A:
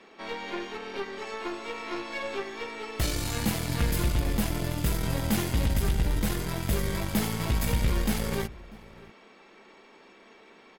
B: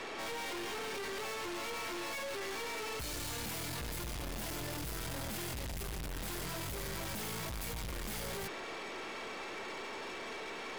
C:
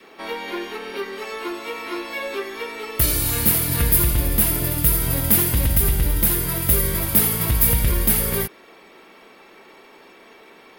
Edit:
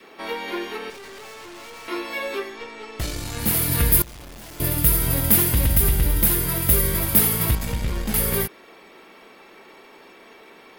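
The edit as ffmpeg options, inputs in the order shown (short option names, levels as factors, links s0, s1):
-filter_complex "[1:a]asplit=2[s0][s1];[0:a]asplit=2[s2][s3];[2:a]asplit=5[s4][s5][s6][s7][s8];[s4]atrim=end=0.902[s9];[s0]atrim=start=0.898:end=1.882[s10];[s5]atrim=start=1.878:end=2.59[s11];[s2]atrim=start=2.35:end=3.6[s12];[s6]atrim=start=3.36:end=4.022[s13];[s1]atrim=start=4.018:end=4.602[s14];[s7]atrim=start=4.598:end=7.552[s15];[s3]atrim=start=7.548:end=8.142[s16];[s8]atrim=start=8.138[s17];[s9][s10]acrossfade=d=0.004:c1=hsin:c2=hsin[s18];[s18][s11]acrossfade=d=0.004:c1=hsin:c2=hsin[s19];[s19][s12]acrossfade=d=0.24:c1=tri:c2=tri[s20];[s20][s13]acrossfade=d=0.24:c1=tri:c2=tri[s21];[s21][s14]acrossfade=d=0.004:c1=hsin:c2=hsin[s22];[s22][s15]acrossfade=d=0.004:c1=hsin:c2=hsin[s23];[s23][s16]acrossfade=d=0.004:c1=hsin:c2=hsin[s24];[s24][s17]acrossfade=d=0.004:c1=hsin:c2=hsin"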